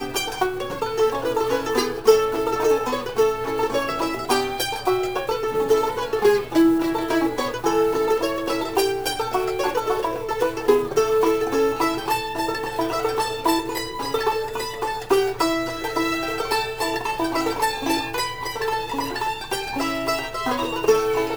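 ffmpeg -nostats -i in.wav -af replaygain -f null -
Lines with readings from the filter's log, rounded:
track_gain = +2.7 dB
track_peak = 0.506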